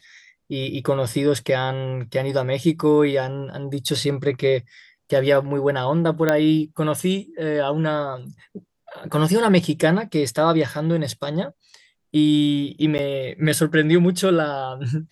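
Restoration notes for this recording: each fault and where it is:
0:06.29: click −6 dBFS
0:12.98–0:12.99: drop-out 9.9 ms

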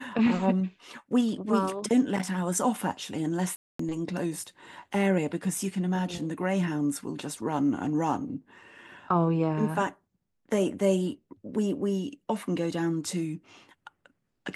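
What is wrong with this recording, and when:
0:03.56–0:03.79: drop-out 234 ms

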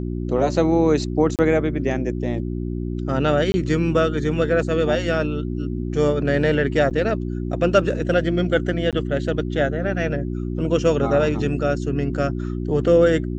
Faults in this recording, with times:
mains hum 60 Hz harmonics 6 −26 dBFS
0:01.36–0:01.39: drop-out 28 ms
0:03.52–0:03.54: drop-out 20 ms
0:06.90–0:06.91: drop-out 7.8 ms
0:08.91–0:08.93: drop-out 17 ms

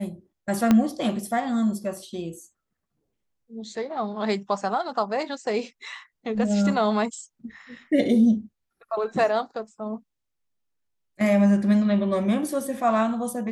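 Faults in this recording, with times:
0:00.71: click −7 dBFS

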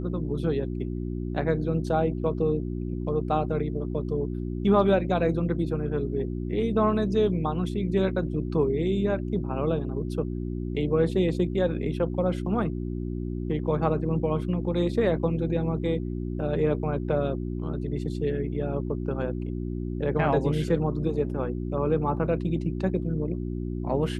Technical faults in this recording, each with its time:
mains hum 60 Hz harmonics 6 −31 dBFS

